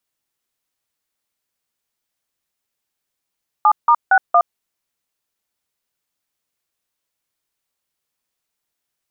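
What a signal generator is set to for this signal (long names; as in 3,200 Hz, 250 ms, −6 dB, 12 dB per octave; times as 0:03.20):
touch tones "7*61", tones 67 ms, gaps 164 ms, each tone −11 dBFS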